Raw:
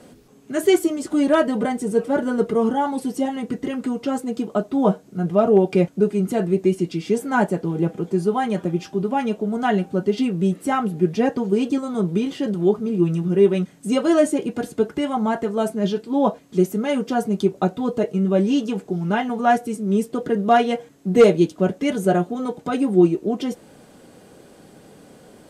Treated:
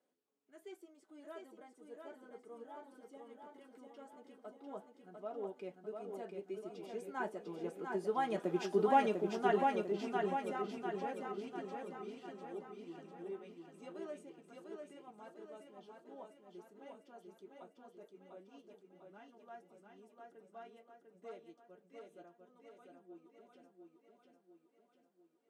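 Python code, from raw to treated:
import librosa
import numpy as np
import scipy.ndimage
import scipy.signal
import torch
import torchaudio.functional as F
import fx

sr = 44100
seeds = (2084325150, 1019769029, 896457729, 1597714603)

p1 = fx.doppler_pass(x, sr, speed_mps=8, closest_m=2.3, pass_at_s=8.81)
p2 = scipy.signal.sosfilt(scipy.signal.butter(2, 380.0, 'highpass', fs=sr, output='sos'), p1)
p3 = fx.high_shelf(p2, sr, hz=4300.0, db=-6.5)
p4 = p3 + fx.echo_feedback(p3, sr, ms=698, feedback_pct=53, wet_db=-4, dry=0)
y = p4 * librosa.db_to_amplitude(-4.0)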